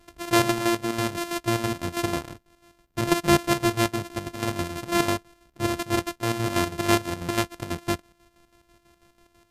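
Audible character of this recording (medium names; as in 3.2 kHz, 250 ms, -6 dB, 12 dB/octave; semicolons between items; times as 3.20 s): a buzz of ramps at a fixed pitch in blocks of 128 samples; chopped level 6.1 Hz, depth 60%, duty 55%; MP2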